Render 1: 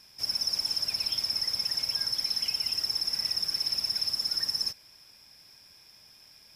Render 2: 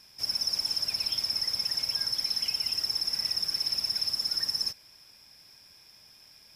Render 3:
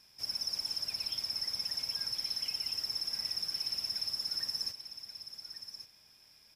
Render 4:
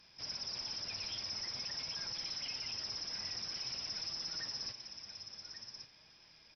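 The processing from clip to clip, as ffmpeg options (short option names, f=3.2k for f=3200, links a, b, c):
-af anull
-af "aecho=1:1:1134:0.299,volume=-6.5dB"
-af "aresample=11025,asoftclip=type=tanh:threshold=-37.5dB,aresample=44100,flanger=delay=5.9:depth=4.4:regen=68:speed=0.48:shape=sinusoidal,volume=8dB" -ar 48000 -c:a libopus -b:a 96k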